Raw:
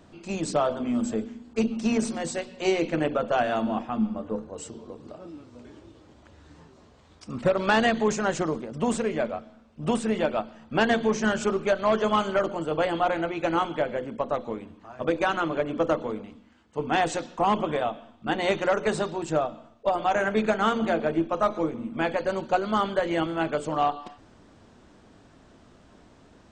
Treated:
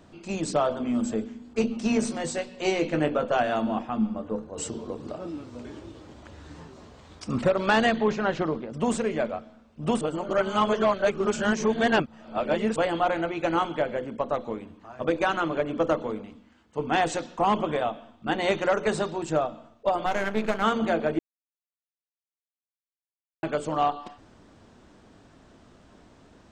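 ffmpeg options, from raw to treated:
-filter_complex "[0:a]asettb=1/sr,asplit=3[s0][s1][s2];[s0]atrim=end=1.404[s3];[s1]atrim=start=1.4:end=3.4,asetpts=PTS-STARTPTS,afade=t=in:d=0.004:c=qsin,afade=t=out:st=1.996:d=0.004:c=qsin,asplit=2[s4][s5];[s5]adelay=20,volume=0.355[s6];[s4][s6]amix=inputs=2:normalize=0,atrim=end_sample=88200[s7];[s2]atrim=start=3.396[s8];[s3][s7]acrossfade=d=0.004:c1=hsin:c2=qsin[s9];[s9][s8]acrossfade=d=0.004:c1=qsin:c2=hsin,asettb=1/sr,asplit=3[s10][s11][s12];[s10]atrim=end=4.574[s13];[s11]atrim=start=4.57:end=7.45,asetpts=PTS-STARTPTS,afade=t=in:d=0.004:c=qsin,afade=t=out:st=2.876:d=0.004:c=qsin,acontrast=69[s14];[s12]atrim=start=7.446[s15];[s13][s14]acrossfade=d=0.004:c1=hsin:c2=qsin[s16];[s16][s15]acrossfade=d=0.004:c1=qsin:c2=hsin,asettb=1/sr,asplit=3[s17][s18][s19];[s17]atrim=end=7.964[s20];[s18]atrim=start=7.96:end=8.7,asetpts=PTS-STARTPTS,afade=t=in:d=0.004:c=qsin,afade=t=out:st=0.736:d=0.004:c=qsin,lowpass=f=4400:w=0.5412,lowpass=f=4400:w=1.3066[s21];[s19]atrim=start=8.696[s22];[s20][s21]acrossfade=d=0.004:c1=hsin:c2=qsin[s23];[s23][s22]acrossfade=d=0.004:c1=qsin:c2=hsin,asplit=3[s24][s25][s26];[s24]afade=t=out:st=20.05:d=0.02[s27];[s25]aeval=exprs='if(lt(val(0),0),0.251*val(0),val(0))':c=same,afade=t=in:st=20.05:d=0.02,afade=t=out:st=20.62:d=0.02[s28];[s26]afade=t=in:st=20.62:d=0.02[s29];[s27][s28][s29]amix=inputs=3:normalize=0,asplit=5[s30][s31][s32][s33][s34];[s30]atrim=end=10.012[s35];[s31]atrim=start=10.008:end=12.762,asetpts=PTS-STARTPTS,areverse[s36];[s32]atrim=start=12.758:end=21.19,asetpts=PTS-STARTPTS,afade=t=out:st=8.428:d=0.004:c=hsin[s37];[s33]atrim=start=21.19:end=23.43,asetpts=PTS-STARTPTS,volume=0[s38];[s34]atrim=start=23.43,asetpts=PTS-STARTPTS,afade=t=in:d=0.004:c=hsin[s39];[s35][s36]acrossfade=d=0.004:c1=hsin:c2=hsin[s40];[s37][s38][s39]concat=n=3:v=0:a=1[s41];[s40][s41]acrossfade=d=0.004:c1=hsin:c2=hsin"

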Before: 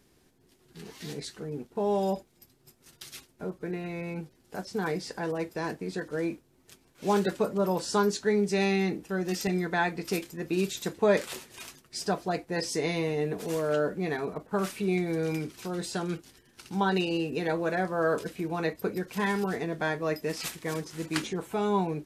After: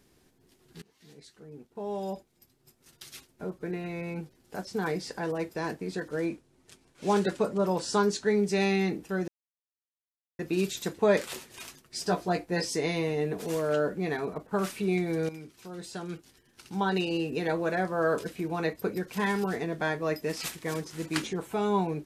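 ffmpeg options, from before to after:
-filter_complex "[0:a]asettb=1/sr,asplit=3[s0][s1][s2];[s0]atrim=end=6.264[s3];[s1]atrim=start=6.26:end=8.28,asetpts=PTS-STARTPTS,afade=t=in:d=0.004:c=qsin,afade=t=out:st=2.016:d=0.004:c=qsin,lowpass=f=11000:w=0.5412,lowpass=f=11000:w=1.3066[s4];[s2]atrim=start=8.276[s5];[s3][s4]acrossfade=d=0.004:c1=hsin:c2=qsin[s6];[s6][s5]acrossfade=d=0.004:c1=qsin:c2=hsin,asettb=1/sr,asplit=3[s7][s8][s9];[s7]atrim=end=12.054[s10];[s8]atrim=start=12.05:end=12.65,asetpts=PTS-STARTPTS,afade=t=in:d=0.004:c=qsin,afade=t=out:st=0.596:d=0.004:c=qsin,asplit=2[s11][s12];[s12]adelay=17,volume=0.596[s13];[s11][s13]amix=inputs=2:normalize=0,atrim=end_sample=26460[s14];[s9]atrim=start=12.646[s15];[s10][s14]acrossfade=d=0.004:c1=hsin:c2=qsin[s16];[s16][s15]acrossfade=d=0.004:c1=qsin:c2=hsin,asplit=5[s17][s18][s19][s20][s21];[s17]atrim=end=0.82,asetpts=PTS-STARTPTS,afade=t=out:st=0.816:d=0.004:c=hsin:silence=0.0707946[s22];[s18]atrim=start=0.82:end=9.28,asetpts=PTS-STARTPTS,afade=t=in:d=2.85:silence=0.0707946,afade=t=out:st=8.456:d=0.004:c=hsin[s23];[s19]atrim=start=9.28:end=10.39,asetpts=PTS-STARTPTS,volume=0[s24];[s20]atrim=start=10.39:end=15.29,asetpts=PTS-STARTPTS,afade=t=in:d=0.004:c=hsin,afade=t=out:st=4.896:d=0.004:c=hsin:silence=0.237137[s25];[s21]atrim=start=15.29,asetpts=PTS-STARTPTS,afade=t=in:d=2.02:silence=0.237137[s26];[s22][s23][s24][s25][s26]concat=n=5:v=0:a=1"

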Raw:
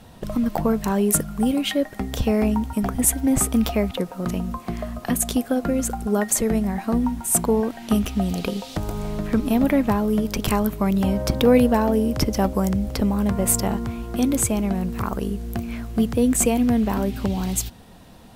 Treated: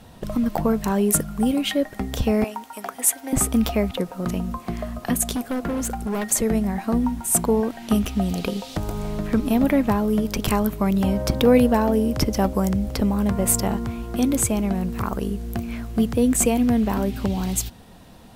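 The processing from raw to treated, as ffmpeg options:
-filter_complex "[0:a]asettb=1/sr,asplit=3[s0][s1][s2];[s0]atrim=end=2.444[s3];[s1]atrim=start=2.44:end=3.33,asetpts=PTS-STARTPTS,afade=t=in:d=0.004:c=qsin,afade=t=out:st=0.886:d=0.004:c=qsin,highpass=630[s4];[s2]atrim=start=3.326[s5];[s3][s4]acrossfade=d=0.004:c1=hsin:c2=qsin[s6];[s6][s5]acrossfade=d=0.004:c1=qsin:c2=hsin,asettb=1/sr,asplit=3[s7][s8][s9];[s7]atrim=end=5.344[s10];[s8]atrim=start=5.34:end=6.25,asetpts=PTS-STARTPTS,afade=t=in:d=0.004:c=qsin,afade=t=out:st=0.906:d=0.004:c=qsin,asoftclip=type=hard:threshold=0.0794[s11];[s9]atrim=start=6.246[s12];[s10][s11]acrossfade=d=0.004:c1=hsin:c2=qsin[s13];[s13][s12]acrossfade=d=0.004:c1=qsin:c2=hsin"

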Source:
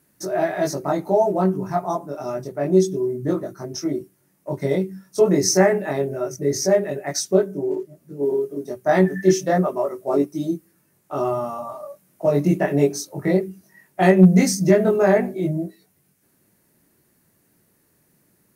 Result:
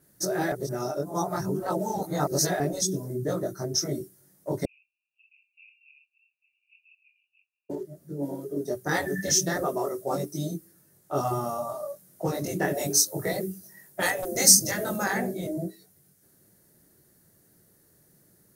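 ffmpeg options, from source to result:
-filter_complex "[0:a]asettb=1/sr,asplit=3[s0][s1][s2];[s0]atrim=end=4.654[s3];[s1]atrim=start=4.65:end=7.7,asetpts=PTS-STARTPTS,afade=t=in:d=0.004:c=qsin,afade=t=out:st=3.046:d=0.004:c=qsin,asuperpass=centerf=2600:order=12:qfactor=5.4[s4];[s2]atrim=start=7.696[s5];[s3][s4]acrossfade=d=0.004:c1=hsin:c2=qsin[s6];[s6][s5]acrossfade=d=0.004:c1=qsin:c2=hsin,asettb=1/sr,asplit=3[s7][s8][s9];[s7]atrim=end=12.754[s10];[s8]atrim=start=12.75:end=15.04,asetpts=PTS-STARTPTS,afade=t=in:d=0.004:c=qsin,afade=t=out:st=2.286:d=0.004:c=qsin,highshelf=f=9400:g=6.5[s11];[s9]atrim=start=15.036[s12];[s10][s11]acrossfade=d=0.004:c1=hsin:c2=qsin[s13];[s13][s12]acrossfade=d=0.004:c1=qsin:c2=hsin,asplit=3[s14][s15][s16];[s14]atrim=end=0.522[s17];[s15]atrim=start=0.518:end=2.602,asetpts=PTS-STARTPTS,areverse[s18];[s16]atrim=start=2.598[s19];[s17][s18]acrossfade=d=0.004:c1=hsin:c2=hsin[s20];[s20][s19]acrossfade=d=0.004:c1=hsin:c2=hsin,equalizer=f=250:t=o:w=0.67:g=-5,equalizer=f=1000:t=o:w=0.67:g=-7,equalizer=f=2500:t=o:w=0.67:g=-10,afftfilt=real='re*lt(hypot(re,im),0.398)':imag='im*lt(hypot(re,im),0.398)':win_size=1024:overlap=0.75,adynamicequalizer=threshold=0.00447:dfrequency=3800:dqfactor=0.7:tfrequency=3800:tqfactor=0.7:attack=5:release=100:ratio=0.375:range=3.5:mode=boostabove:tftype=highshelf,volume=1.33"

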